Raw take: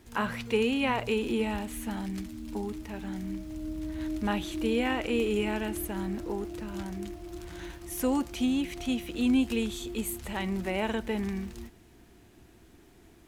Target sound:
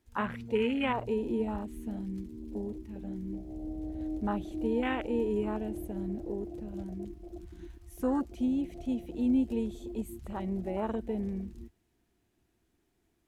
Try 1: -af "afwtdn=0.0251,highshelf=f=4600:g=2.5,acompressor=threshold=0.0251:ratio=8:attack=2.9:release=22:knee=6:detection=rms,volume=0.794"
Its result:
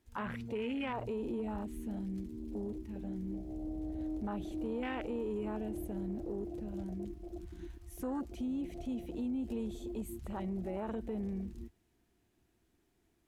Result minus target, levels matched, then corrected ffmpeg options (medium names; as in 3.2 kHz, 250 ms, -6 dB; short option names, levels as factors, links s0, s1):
compression: peak gain reduction +11 dB
-af "afwtdn=0.0251,highshelf=f=4600:g=2.5,volume=0.794"